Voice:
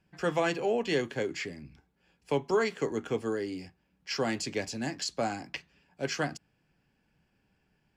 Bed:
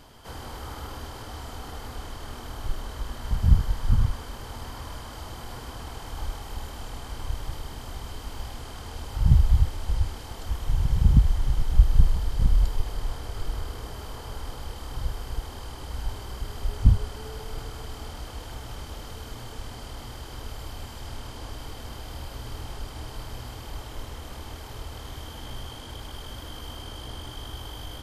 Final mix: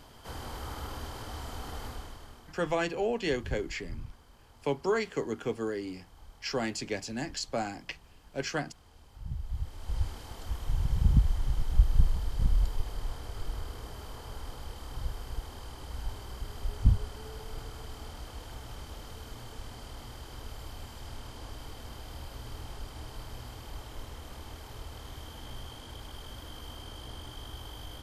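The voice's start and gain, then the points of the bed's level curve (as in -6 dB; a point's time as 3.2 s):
2.35 s, -1.5 dB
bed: 1.86 s -2 dB
2.66 s -20 dB
9.36 s -20 dB
10.01 s -5.5 dB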